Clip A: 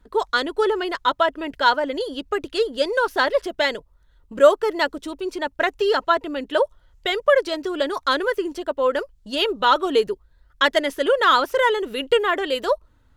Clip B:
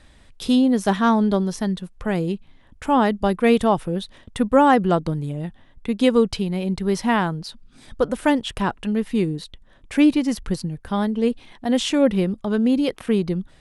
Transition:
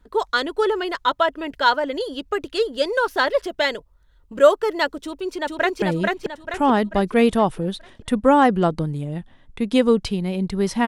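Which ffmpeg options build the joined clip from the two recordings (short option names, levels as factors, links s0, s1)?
-filter_complex "[0:a]apad=whole_dur=10.87,atrim=end=10.87,atrim=end=5.822[s0];[1:a]atrim=start=2.098:end=7.15[s1];[s0][s1]acrossfade=d=0.004:c1=hsin:c2=hsin,asplit=2[s2][s3];[s3]afade=t=in:st=5.03:d=0.01,afade=t=out:st=5.82:d=0.01,aecho=0:1:440|880|1320|1760|2200|2640:0.794328|0.357448|0.160851|0.0723832|0.0325724|0.0146576[s4];[s2][s4]amix=inputs=2:normalize=0"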